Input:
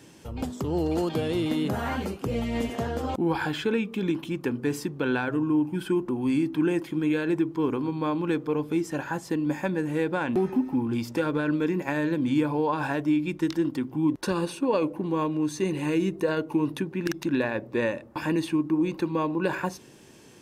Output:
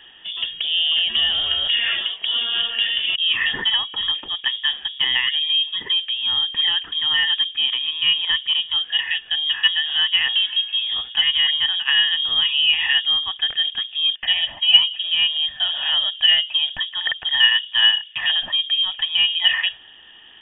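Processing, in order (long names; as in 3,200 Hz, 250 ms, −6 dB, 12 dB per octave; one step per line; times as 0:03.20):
hollow resonant body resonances 620/1,700 Hz, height 16 dB, ringing for 25 ms
voice inversion scrambler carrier 3,500 Hz
level +2 dB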